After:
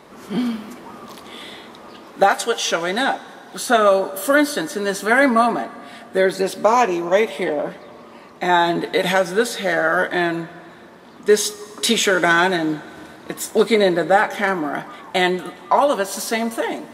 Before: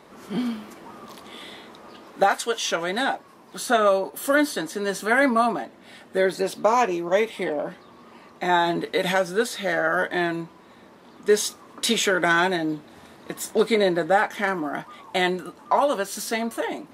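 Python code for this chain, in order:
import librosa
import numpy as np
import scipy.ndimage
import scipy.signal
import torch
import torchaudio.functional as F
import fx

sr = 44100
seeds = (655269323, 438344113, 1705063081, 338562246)

y = fx.rev_plate(x, sr, seeds[0], rt60_s=2.5, hf_ratio=0.9, predelay_ms=0, drr_db=16.0)
y = F.gain(torch.from_numpy(y), 4.5).numpy()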